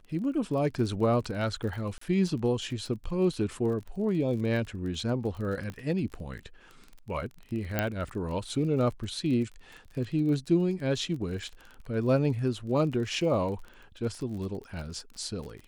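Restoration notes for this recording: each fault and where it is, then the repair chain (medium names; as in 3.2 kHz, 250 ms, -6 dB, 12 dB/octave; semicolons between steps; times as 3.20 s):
crackle 32 per s -37 dBFS
1.98–2.01 s: dropout 34 ms
5.70 s: pop -25 dBFS
7.79 s: pop -12 dBFS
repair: de-click; interpolate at 1.98 s, 34 ms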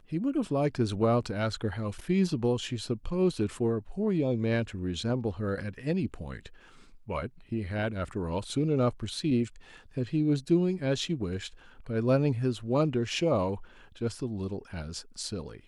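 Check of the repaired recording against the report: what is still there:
5.70 s: pop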